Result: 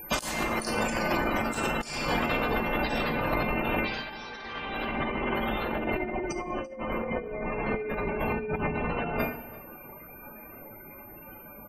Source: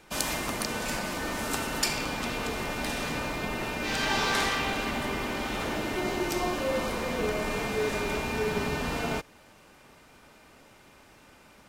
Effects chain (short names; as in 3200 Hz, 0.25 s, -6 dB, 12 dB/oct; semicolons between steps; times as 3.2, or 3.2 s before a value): whine 13000 Hz -54 dBFS; spectral gate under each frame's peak -15 dB strong; high shelf 7200 Hz +7.5 dB; notches 60/120/180/240/300/360 Hz; two-slope reverb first 0.46 s, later 1.7 s, from -25 dB, DRR 2.5 dB; negative-ratio compressor -34 dBFS, ratio -0.5; on a send: echo 0.339 s -20 dB; on the sum: gain +5 dB